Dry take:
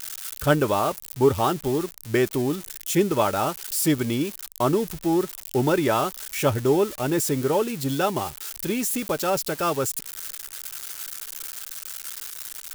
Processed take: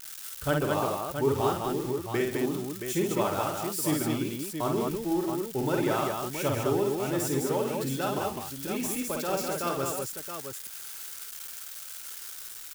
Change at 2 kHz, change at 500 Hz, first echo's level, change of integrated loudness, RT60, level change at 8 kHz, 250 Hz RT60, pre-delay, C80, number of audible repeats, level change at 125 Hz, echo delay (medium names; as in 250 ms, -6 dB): -5.0 dB, -5.0 dB, -3.5 dB, -5.0 dB, no reverb, -5.0 dB, no reverb, no reverb, no reverb, 4, -5.5 dB, 52 ms